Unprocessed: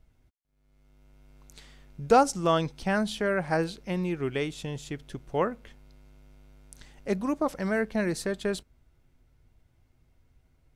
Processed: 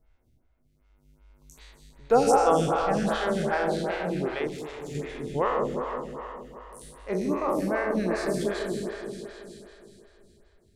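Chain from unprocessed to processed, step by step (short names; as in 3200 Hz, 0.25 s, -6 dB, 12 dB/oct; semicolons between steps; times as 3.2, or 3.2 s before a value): spectral trails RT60 1.51 s; repeats that get brighter 0.159 s, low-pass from 750 Hz, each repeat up 1 oct, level -3 dB; 4.47–4.95 tube stage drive 29 dB, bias 0.6; photocell phaser 2.6 Hz; gain -1.5 dB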